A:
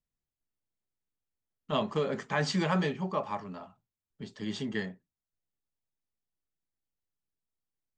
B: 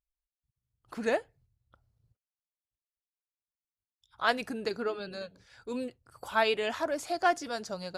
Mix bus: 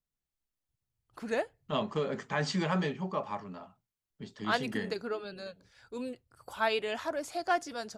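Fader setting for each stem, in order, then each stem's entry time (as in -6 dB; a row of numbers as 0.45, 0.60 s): -2.0, -3.0 dB; 0.00, 0.25 s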